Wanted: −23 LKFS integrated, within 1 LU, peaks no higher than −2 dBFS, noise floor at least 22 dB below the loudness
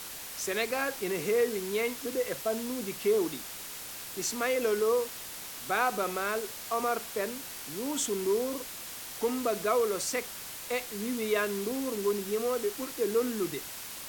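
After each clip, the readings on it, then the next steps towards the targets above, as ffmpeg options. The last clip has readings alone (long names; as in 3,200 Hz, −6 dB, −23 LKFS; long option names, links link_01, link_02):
background noise floor −42 dBFS; target noise floor −54 dBFS; integrated loudness −31.5 LKFS; sample peak −13.5 dBFS; target loudness −23.0 LKFS
→ -af "afftdn=noise_reduction=12:noise_floor=-42"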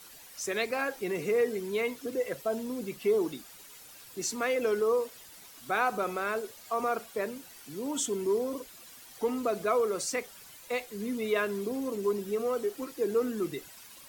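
background noise floor −51 dBFS; target noise floor −54 dBFS
→ -af "afftdn=noise_reduction=6:noise_floor=-51"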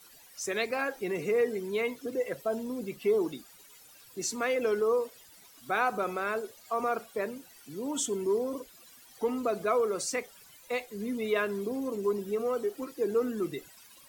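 background noise floor −55 dBFS; integrated loudness −31.5 LKFS; sample peak −14.5 dBFS; target loudness −23.0 LKFS
→ -af "volume=8.5dB"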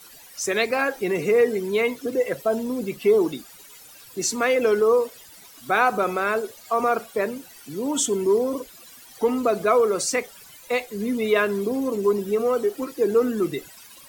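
integrated loudness −23.0 LKFS; sample peak −6.0 dBFS; background noise floor −47 dBFS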